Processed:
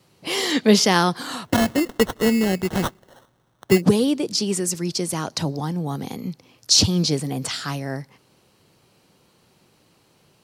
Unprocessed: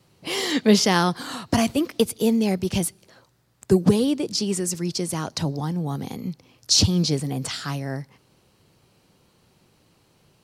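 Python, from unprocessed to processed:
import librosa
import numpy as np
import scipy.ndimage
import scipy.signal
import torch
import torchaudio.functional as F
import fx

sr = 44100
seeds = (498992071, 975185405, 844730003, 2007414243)

y = fx.low_shelf(x, sr, hz=97.0, db=-9.5)
y = fx.sample_hold(y, sr, seeds[0], rate_hz=2400.0, jitter_pct=0, at=(1.44, 3.8), fade=0.02)
y = F.gain(torch.from_numpy(y), 2.5).numpy()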